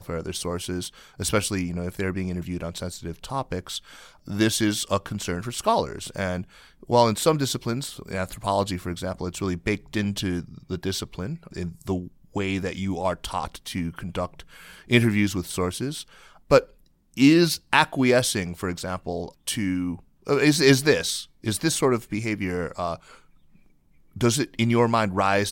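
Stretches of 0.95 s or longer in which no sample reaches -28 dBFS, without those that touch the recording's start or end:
22.95–24.17

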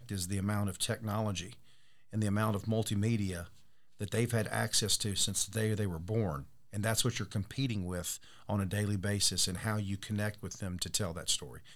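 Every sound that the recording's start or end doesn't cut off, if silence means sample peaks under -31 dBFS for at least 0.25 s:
2.14–3.41
4.01–6.36
6.75–8.13
8.49–11.36

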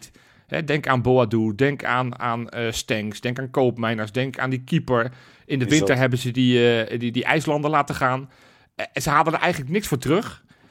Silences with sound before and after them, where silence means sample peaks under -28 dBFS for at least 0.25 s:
5.08–5.51
8.22–8.79

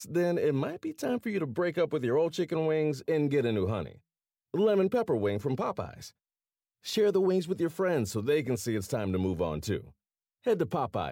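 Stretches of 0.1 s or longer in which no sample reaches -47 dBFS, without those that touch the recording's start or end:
3.97–4.54
6.09–6.84
9.9–10.44

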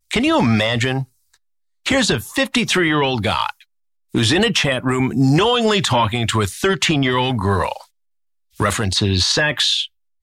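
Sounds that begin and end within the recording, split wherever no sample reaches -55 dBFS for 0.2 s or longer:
1.85–3.64
4.1–7.9
8.51–9.88

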